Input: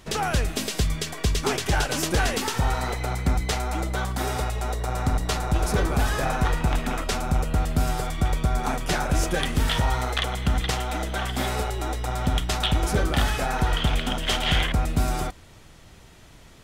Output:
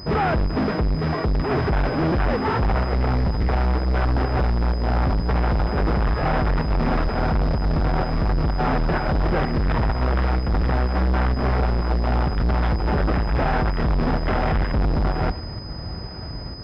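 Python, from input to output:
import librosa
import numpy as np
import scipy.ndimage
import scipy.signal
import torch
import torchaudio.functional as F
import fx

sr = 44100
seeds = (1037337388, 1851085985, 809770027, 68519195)

p1 = scipy.signal.medfilt(x, 15)
p2 = scipy.signal.sosfilt(scipy.signal.butter(2, 50.0, 'highpass', fs=sr, output='sos'), p1)
p3 = fx.low_shelf(p2, sr, hz=210.0, db=7.0)
p4 = fx.over_compress(p3, sr, threshold_db=-24.0, ratio=-1.0)
p5 = p3 + F.gain(torch.from_numpy(p4), -1.5).numpy()
p6 = np.clip(10.0 ** (26.0 / 20.0) * p5, -1.0, 1.0) / 10.0 ** (26.0 / 20.0)
p7 = fx.volume_shaper(p6, sr, bpm=127, per_beat=1, depth_db=-5, release_ms=90.0, shape='slow start')
p8 = p7 + fx.echo_feedback(p7, sr, ms=877, feedback_pct=54, wet_db=-20.5, dry=0)
p9 = fx.pwm(p8, sr, carrier_hz=5000.0)
y = F.gain(torch.from_numpy(p9), 7.5).numpy()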